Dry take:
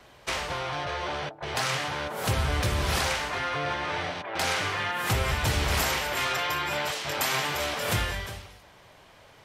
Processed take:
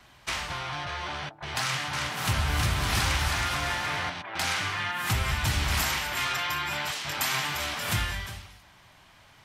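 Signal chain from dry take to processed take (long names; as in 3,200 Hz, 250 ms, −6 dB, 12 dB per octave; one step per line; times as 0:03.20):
parametric band 480 Hz −12.5 dB 0.87 octaves
0:01.61–0:04.10: bouncing-ball delay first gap 320 ms, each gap 0.75×, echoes 5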